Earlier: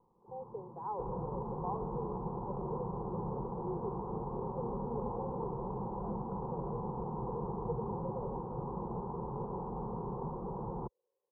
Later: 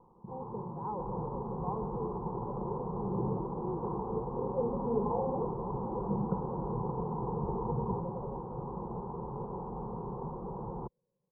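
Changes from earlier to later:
speech: remove steep high-pass 350 Hz 96 dB/octave; first sound +10.0 dB

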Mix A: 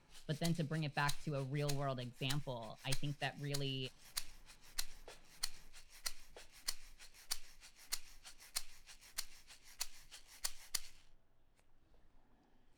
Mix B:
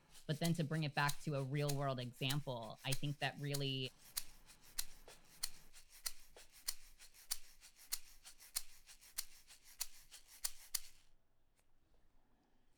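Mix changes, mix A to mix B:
background -5.0 dB; master: add treble shelf 8.1 kHz +10 dB

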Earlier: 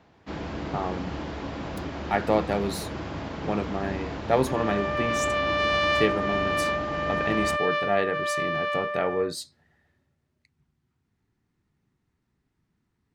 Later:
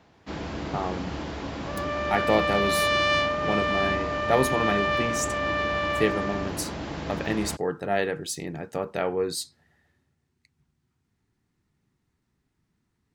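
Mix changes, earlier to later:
second sound: entry -2.80 s; master: add treble shelf 5.1 kHz +7.5 dB

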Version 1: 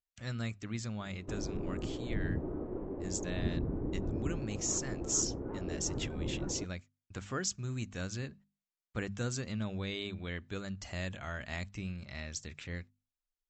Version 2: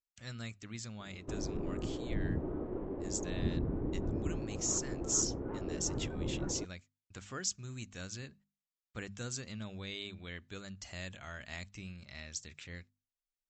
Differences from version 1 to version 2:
speech -7.0 dB; master: add treble shelf 2.3 kHz +8 dB

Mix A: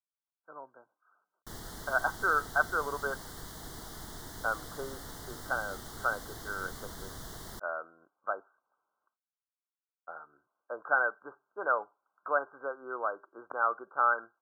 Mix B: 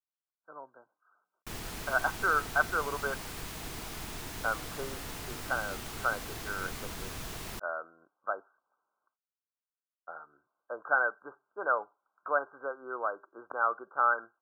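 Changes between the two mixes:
background +3.5 dB; master: remove Butterworth band-stop 2.5 kHz, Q 1.9

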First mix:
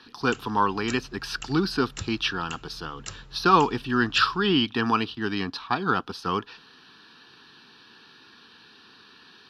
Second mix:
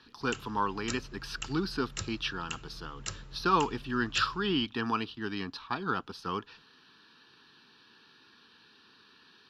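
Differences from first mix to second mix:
speech -7.5 dB; master: add band-stop 740 Hz, Q 13

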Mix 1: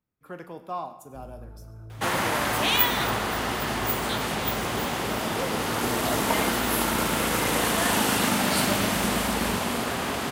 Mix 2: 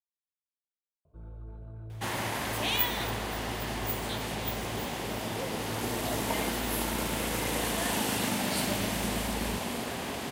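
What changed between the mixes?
speech: muted; second sound -6.0 dB; master: add peaking EQ 1.3 kHz -6.5 dB 0.55 oct

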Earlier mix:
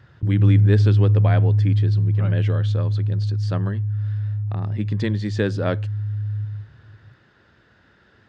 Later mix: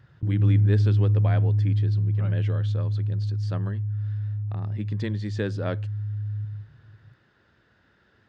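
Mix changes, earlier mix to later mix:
speech -6.5 dB; background: add peaking EQ 76 Hz -6.5 dB 1.3 oct

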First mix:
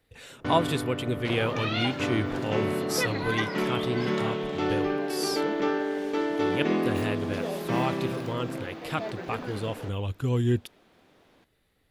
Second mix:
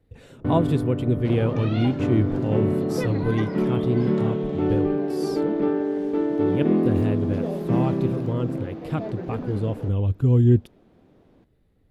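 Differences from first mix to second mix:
first sound: add distance through air 210 m; master: add tilt shelf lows +10 dB, about 700 Hz

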